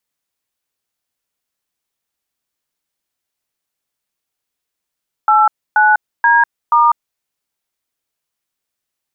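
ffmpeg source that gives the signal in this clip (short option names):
-f lavfi -i "aevalsrc='0.316*clip(min(mod(t,0.48),0.198-mod(t,0.48))/0.002,0,1)*(eq(floor(t/0.48),0)*(sin(2*PI*852*mod(t,0.48))+sin(2*PI*1336*mod(t,0.48)))+eq(floor(t/0.48),1)*(sin(2*PI*852*mod(t,0.48))+sin(2*PI*1477*mod(t,0.48)))+eq(floor(t/0.48),2)*(sin(2*PI*941*mod(t,0.48))+sin(2*PI*1633*mod(t,0.48)))+eq(floor(t/0.48),3)*(sin(2*PI*941*mod(t,0.48))+sin(2*PI*1209*mod(t,0.48))))':d=1.92:s=44100"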